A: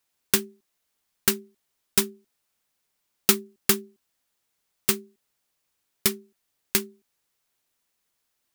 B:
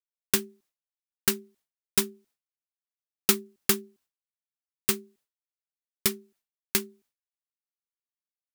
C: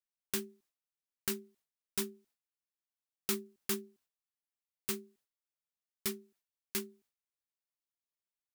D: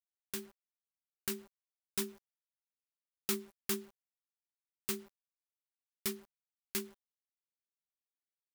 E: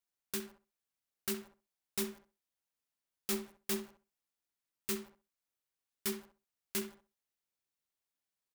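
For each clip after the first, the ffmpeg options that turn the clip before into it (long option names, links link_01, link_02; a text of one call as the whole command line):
ffmpeg -i in.wav -af "agate=range=-33dB:threshold=-55dB:ratio=3:detection=peak,volume=-2.5dB" out.wav
ffmpeg -i in.wav -af "alimiter=limit=-15.5dB:level=0:latency=1:release=36,volume=-4.5dB" out.wav
ffmpeg -i in.wav -af "dynaudnorm=framelen=270:gausssize=9:maxgain=5dB,acrusher=bits=8:mix=0:aa=0.000001,volume=-5.5dB" out.wav
ffmpeg -i in.wav -filter_complex "[0:a]asoftclip=type=hard:threshold=-34dB,asplit=2[link_01][link_02];[link_02]adelay=65,lowpass=frequency=2100:poles=1,volume=-7dB,asplit=2[link_03][link_04];[link_04]adelay=65,lowpass=frequency=2100:poles=1,volume=0.19,asplit=2[link_05][link_06];[link_06]adelay=65,lowpass=frequency=2100:poles=1,volume=0.19[link_07];[link_03][link_05][link_07]amix=inputs=3:normalize=0[link_08];[link_01][link_08]amix=inputs=2:normalize=0,volume=4dB" out.wav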